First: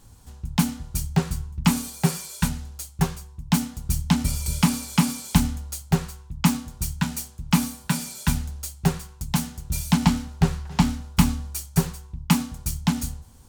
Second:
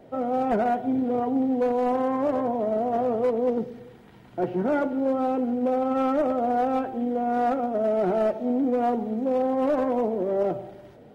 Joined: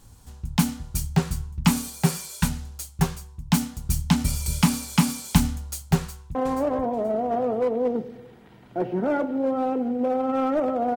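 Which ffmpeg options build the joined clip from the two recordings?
ffmpeg -i cue0.wav -i cue1.wav -filter_complex "[0:a]apad=whole_dur=10.96,atrim=end=10.96,atrim=end=6.352[link_01];[1:a]atrim=start=1.968:end=6.58[link_02];[link_01][link_02]acrossfade=duration=0.004:curve1=hsin:curve2=hsin,asplit=2[link_03][link_04];[link_04]afade=type=in:start_time=5.97:duration=0.01,afade=type=out:start_time=6.35:duration=0.01,aecho=0:1:480|960|1440:0.530884|0.106177|0.0212354[link_05];[link_03][link_05]amix=inputs=2:normalize=0" out.wav

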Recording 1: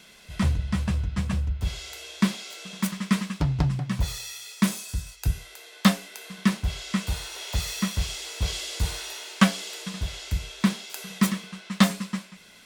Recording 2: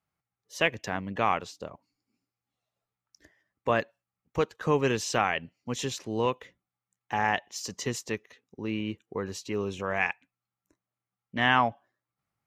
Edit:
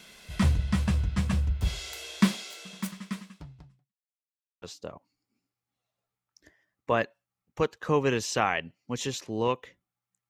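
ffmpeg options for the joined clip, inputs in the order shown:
ffmpeg -i cue0.wav -i cue1.wav -filter_complex "[0:a]apad=whole_dur=10.29,atrim=end=10.29,asplit=2[link_01][link_02];[link_01]atrim=end=3.94,asetpts=PTS-STARTPTS,afade=type=out:start_time=2.28:duration=1.66:curve=qua[link_03];[link_02]atrim=start=3.94:end=4.62,asetpts=PTS-STARTPTS,volume=0[link_04];[1:a]atrim=start=1.4:end=7.07,asetpts=PTS-STARTPTS,afade=type=in:duration=0.004:curve=hsin[link_05];[link_03][link_04][link_05]concat=n=3:v=0:a=1" out.wav

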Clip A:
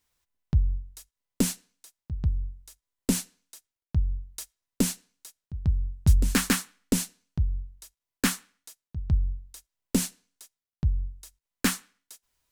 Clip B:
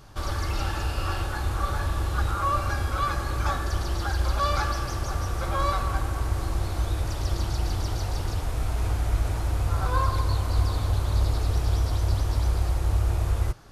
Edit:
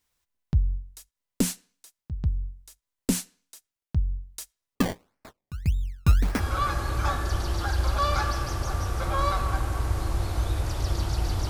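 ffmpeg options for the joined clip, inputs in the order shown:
ffmpeg -i cue0.wav -i cue1.wav -filter_complex "[0:a]asettb=1/sr,asplit=3[link_01][link_02][link_03];[link_01]atrim=end=4.754[link_04];[link_02]atrim=start=4.75:end=6.43,asetpts=PTS-STARTPTS,afade=type=in:duration=0.004:curve=qsin,afade=type=out:start_time=1.676:duration=0.004:curve=qsin,acrusher=samples=23:mix=1:aa=0.000001:lfo=1:lforange=23:lforate=1.7[link_05];[link_03]atrim=start=6.426[link_06];[link_04][link_05]acrossfade=duration=0.004:curve1=hsin:curve2=qsin[link_07];[link_07][link_06]acrossfade=duration=0.004:curve1=qsin:curve2=hsin,apad=whole_dur=11.49,atrim=end=11.49,atrim=end=6.43,asetpts=PTS-STARTPTS[link_08];[1:a]atrim=start=2.72:end=7.9,asetpts=PTS-STARTPTS[link_09];[link_08][link_09]acrossfade=duration=0.12:curve1=tri:curve2=tri" out.wav

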